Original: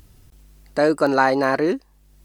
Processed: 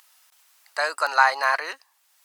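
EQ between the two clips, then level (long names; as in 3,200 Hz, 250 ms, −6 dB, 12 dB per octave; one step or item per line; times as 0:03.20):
high-pass filter 880 Hz 24 dB per octave
+3.0 dB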